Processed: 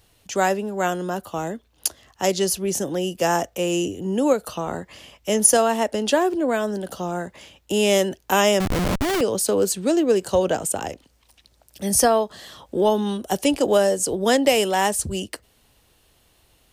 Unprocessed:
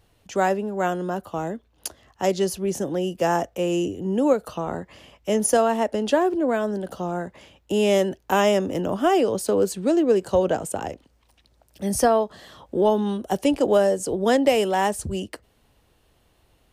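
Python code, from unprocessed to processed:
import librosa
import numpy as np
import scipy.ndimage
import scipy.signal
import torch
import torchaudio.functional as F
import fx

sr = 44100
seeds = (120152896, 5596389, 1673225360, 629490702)

y = fx.high_shelf(x, sr, hz=2500.0, db=9.5)
y = fx.schmitt(y, sr, flips_db=-23.5, at=(8.6, 9.21))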